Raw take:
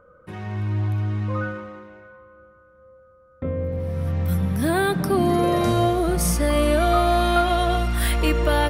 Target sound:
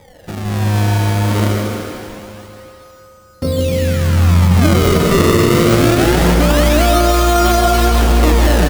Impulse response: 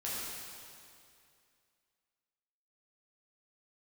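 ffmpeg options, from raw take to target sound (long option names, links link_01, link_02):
-filter_complex "[0:a]acrusher=samples=31:mix=1:aa=0.000001:lfo=1:lforange=49.6:lforate=0.24,aecho=1:1:158:0.531,asplit=2[link_01][link_02];[1:a]atrim=start_sample=2205,adelay=147[link_03];[link_02][link_03]afir=irnorm=-1:irlink=0,volume=-8dB[link_04];[link_01][link_04]amix=inputs=2:normalize=0,alimiter=level_in=11dB:limit=-1dB:release=50:level=0:latency=1,volume=-2dB"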